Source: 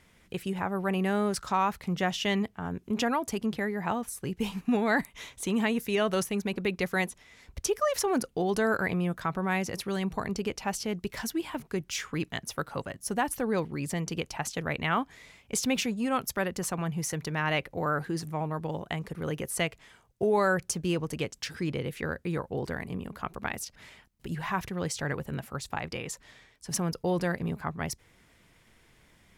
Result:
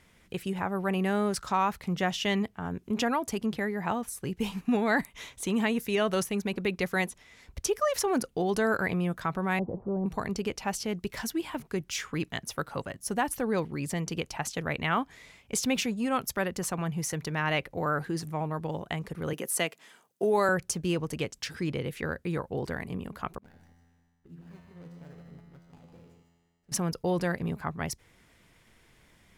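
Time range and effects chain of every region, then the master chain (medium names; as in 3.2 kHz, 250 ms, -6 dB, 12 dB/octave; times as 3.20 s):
9.59–10.06 s: jump at every zero crossing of -40 dBFS + steep low-pass 900 Hz
19.33–20.49 s: high-pass 190 Hz 24 dB/octave + treble shelf 8.3 kHz +7.5 dB + band-stop 2.2 kHz, Q 23
23.38–26.72 s: median filter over 41 samples + feedback comb 85 Hz, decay 1.9 s, mix 90% + delay 152 ms -7 dB
whole clip: none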